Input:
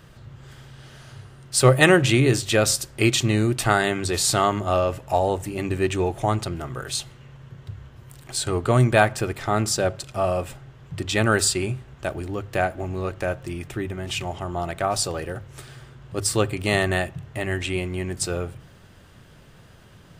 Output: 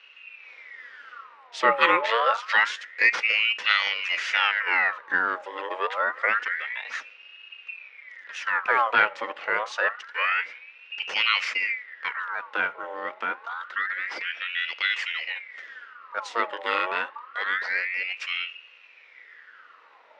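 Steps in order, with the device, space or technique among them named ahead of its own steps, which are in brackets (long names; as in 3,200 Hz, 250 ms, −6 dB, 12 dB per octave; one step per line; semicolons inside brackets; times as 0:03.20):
voice changer toy (ring modulator whose carrier an LFO sweeps 1,700 Hz, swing 60%, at 0.27 Hz; loudspeaker in its box 490–4,500 Hz, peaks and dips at 500 Hz +8 dB, 730 Hz −5 dB, 1,400 Hz +6 dB, 1,900 Hz +8 dB, 2,800 Hz +3 dB, 4,300 Hz −4 dB)
level −3.5 dB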